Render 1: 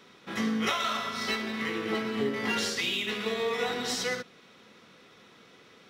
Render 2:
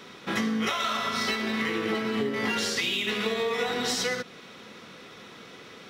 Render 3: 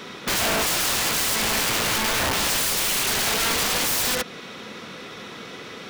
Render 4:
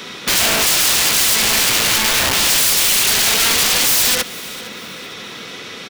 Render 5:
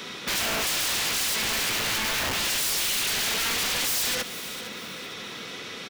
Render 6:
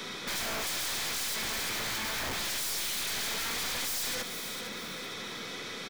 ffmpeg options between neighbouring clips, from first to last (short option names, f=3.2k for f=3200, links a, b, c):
-af "acompressor=threshold=-34dB:ratio=6,volume=9dB"
-af "aeval=exprs='(mod(21.1*val(0)+1,2)-1)/21.1':c=same,volume=8.5dB"
-filter_complex "[0:a]acrossover=split=510|2100[a][b][c];[c]acontrast=74[d];[a][b][d]amix=inputs=3:normalize=0,aecho=1:1:458|916|1374:0.112|0.037|0.0122,volume=3dB"
-af "asoftclip=type=tanh:threshold=-17.5dB,volume=-5.5dB"
-af "bandreject=f=2.8k:w=7.1,aeval=exprs='(tanh(39.8*val(0)+0.25)-tanh(0.25))/39.8':c=same"